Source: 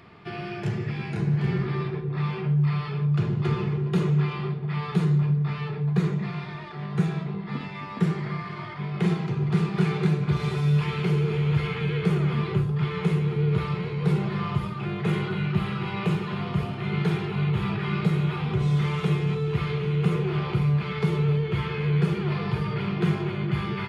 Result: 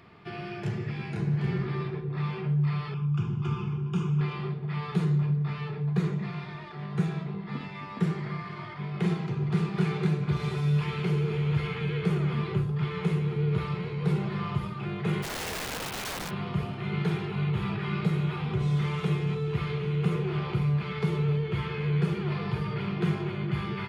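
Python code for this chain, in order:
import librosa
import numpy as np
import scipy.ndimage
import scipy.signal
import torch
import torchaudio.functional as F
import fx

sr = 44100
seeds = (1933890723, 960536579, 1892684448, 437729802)

y = fx.fixed_phaser(x, sr, hz=2800.0, stages=8, at=(2.94, 4.21))
y = fx.overflow_wrap(y, sr, gain_db=26.0, at=(15.22, 16.29), fade=0.02)
y = y * 10.0 ** (-3.5 / 20.0)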